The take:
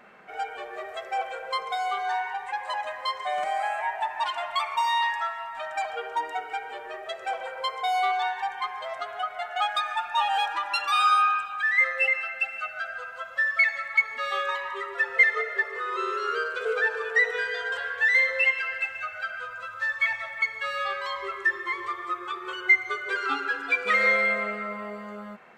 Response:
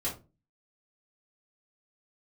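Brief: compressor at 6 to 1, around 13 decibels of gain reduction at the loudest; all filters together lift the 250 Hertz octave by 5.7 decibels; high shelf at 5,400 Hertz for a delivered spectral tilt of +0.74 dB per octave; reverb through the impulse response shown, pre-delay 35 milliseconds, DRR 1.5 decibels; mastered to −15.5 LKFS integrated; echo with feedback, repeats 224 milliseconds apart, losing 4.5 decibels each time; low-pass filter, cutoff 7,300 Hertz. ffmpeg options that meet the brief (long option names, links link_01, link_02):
-filter_complex "[0:a]lowpass=7300,equalizer=frequency=250:width_type=o:gain=8,highshelf=frequency=5400:gain=6,acompressor=threshold=-28dB:ratio=6,aecho=1:1:224|448|672|896|1120|1344|1568|1792|2016:0.596|0.357|0.214|0.129|0.0772|0.0463|0.0278|0.0167|0.01,asplit=2[link_01][link_02];[1:a]atrim=start_sample=2205,adelay=35[link_03];[link_02][link_03]afir=irnorm=-1:irlink=0,volume=-6dB[link_04];[link_01][link_04]amix=inputs=2:normalize=0,volume=12dB"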